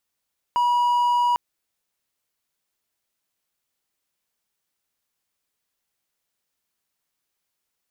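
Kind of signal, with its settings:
tone triangle 968 Hz −15 dBFS 0.80 s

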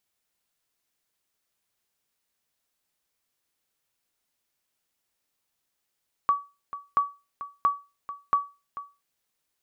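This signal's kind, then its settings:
ping with an echo 1,140 Hz, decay 0.28 s, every 0.68 s, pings 4, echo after 0.44 s, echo −14.5 dB −14 dBFS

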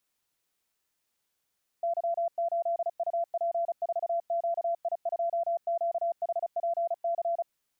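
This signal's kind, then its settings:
Morse code "Y8UP4QI2QHPC" 35 words per minute 680 Hz −25.5 dBFS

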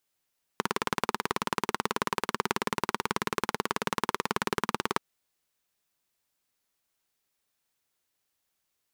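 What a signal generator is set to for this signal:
pulse-train model of a single-cylinder engine, steady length 4.38 s, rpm 2,200, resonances 220/400/960 Hz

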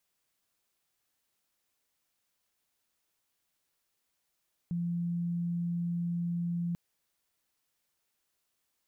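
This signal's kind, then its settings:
tone sine 172 Hz −29.5 dBFS 2.04 s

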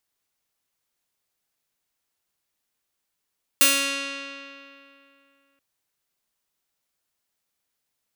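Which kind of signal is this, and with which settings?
Karplus-Strong string C#4, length 1.98 s, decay 2.74 s, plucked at 0.35, bright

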